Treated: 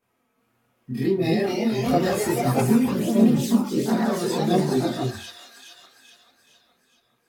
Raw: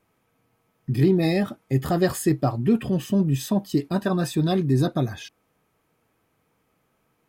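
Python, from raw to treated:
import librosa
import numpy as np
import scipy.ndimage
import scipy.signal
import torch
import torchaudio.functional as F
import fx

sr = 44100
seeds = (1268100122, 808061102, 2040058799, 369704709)

y = fx.low_shelf(x, sr, hz=92.0, db=-9.5)
y = fx.echo_wet_highpass(y, sr, ms=422, feedback_pct=50, hz=1900.0, wet_db=-4.5)
y = fx.echo_pitch(y, sr, ms=376, semitones=2, count=3, db_per_echo=-3.0)
y = fx.chorus_voices(y, sr, voices=2, hz=0.77, base_ms=25, depth_ms=2.4, mix_pct=65)
y = fx.rev_fdn(y, sr, rt60_s=0.34, lf_ratio=1.05, hf_ratio=0.7, size_ms=25.0, drr_db=3.5)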